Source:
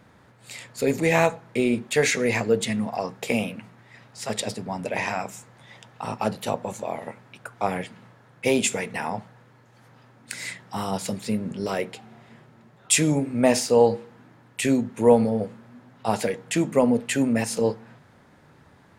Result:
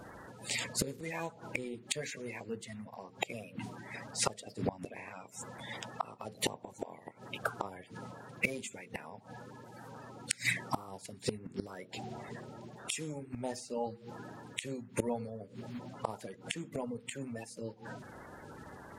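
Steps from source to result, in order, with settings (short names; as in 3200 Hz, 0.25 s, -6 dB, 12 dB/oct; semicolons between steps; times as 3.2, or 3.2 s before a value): bin magnitudes rounded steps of 30 dB; flipped gate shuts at -22 dBFS, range -24 dB; gain +5 dB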